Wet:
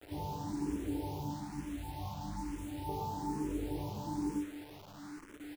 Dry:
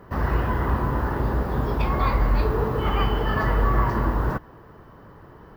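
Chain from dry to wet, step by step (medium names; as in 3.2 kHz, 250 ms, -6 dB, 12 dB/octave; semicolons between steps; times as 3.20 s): dynamic bell 250 Hz, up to -7 dB, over -47 dBFS, Q 4.2; in parallel at 0 dB: compression 5:1, threshold -32 dBFS, peak gain reduction 14.5 dB; on the sum: cascade formant filter u; chord resonator G2 fifth, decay 0.32 s; 1.30–2.89 s: static phaser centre 1.6 kHz, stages 6; bit crusher 10-bit; on a send: delay 151 ms -12.5 dB; on the sum: barber-pole phaser +1.1 Hz; trim +12 dB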